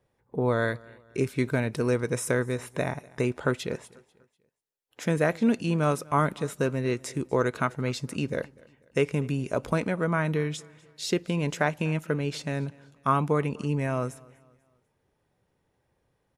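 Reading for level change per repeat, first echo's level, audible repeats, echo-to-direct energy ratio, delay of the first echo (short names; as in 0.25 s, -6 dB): -8.0 dB, -24.0 dB, 2, -23.5 dB, 0.245 s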